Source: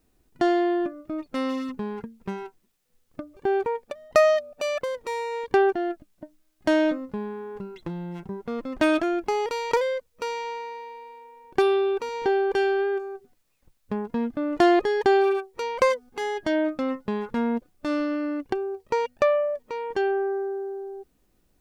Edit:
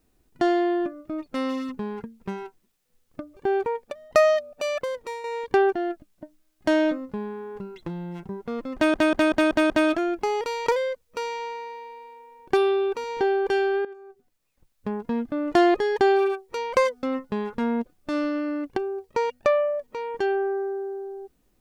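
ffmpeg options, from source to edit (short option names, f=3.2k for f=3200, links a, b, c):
-filter_complex "[0:a]asplit=9[a][b][c][d][e][f][g][h][i];[a]atrim=end=5.24,asetpts=PTS-STARTPTS,afade=t=out:st=4.97:d=0.27:silence=0.375837[j];[b]atrim=start=5.24:end=8.942,asetpts=PTS-STARTPTS,afade=t=in:d=0.004:c=hsin:silence=0.375837[k];[c]atrim=start=8.748:end=8.942[l];[d]atrim=start=8.748:end=8.942[m];[e]atrim=start=8.748:end=8.942[n];[f]atrim=start=8.748:end=8.942[o];[g]atrim=start=8.748:end=12.9,asetpts=PTS-STARTPTS,afade=t=out:st=4.148:d=0.004:c=hsin:silence=0.16788[p];[h]atrim=start=12.9:end=16.082,asetpts=PTS-STARTPTS,afade=t=in:d=1.13:silence=0.16788[q];[i]atrim=start=16.788[r];[j][k]concat=n=2:v=0:a=1[s];[s][l]acrossfade=d=0.004:c1=hsin:c2=hsin[t];[t][m]acrossfade=d=0.004:c1=hsin:c2=hsin[u];[u][n]acrossfade=d=0.004:c1=hsin:c2=hsin[v];[v][o]acrossfade=d=0.004:c1=hsin:c2=hsin[w];[p][q]concat=n=2:v=0:a=1[x];[w][x]acrossfade=d=0.004:c1=hsin:c2=hsin[y];[y][r]acrossfade=d=0.004:c1=hsin:c2=hsin"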